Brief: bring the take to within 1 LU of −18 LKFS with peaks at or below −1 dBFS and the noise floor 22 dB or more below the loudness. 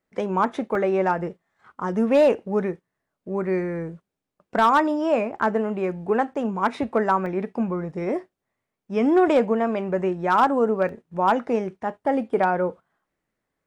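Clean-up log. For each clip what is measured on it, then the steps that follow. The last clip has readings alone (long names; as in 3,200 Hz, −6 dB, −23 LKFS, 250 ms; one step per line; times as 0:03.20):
share of clipped samples 0.2%; peaks flattened at −10.5 dBFS; number of dropouts 3; longest dropout 1.7 ms; integrated loudness −23.0 LKFS; sample peak −10.5 dBFS; target loudness −18.0 LKFS
→ clipped peaks rebuilt −10.5 dBFS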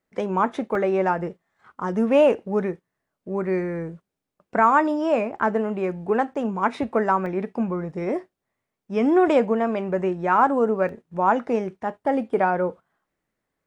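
share of clipped samples 0.0%; number of dropouts 3; longest dropout 1.7 ms
→ repair the gap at 0:00.75/0:07.26/0:10.89, 1.7 ms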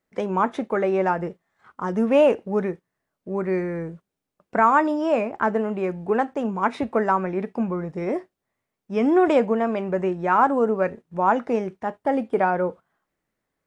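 number of dropouts 0; integrated loudness −23.0 LKFS; sample peak −6.5 dBFS; target loudness −18.0 LKFS
→ level +5 dB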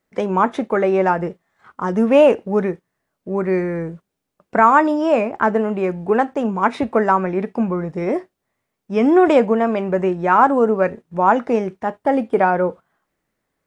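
integrated loudness −18.0 LKFS; sample peak −1.5 dBFS; background noise floor −77 dBFS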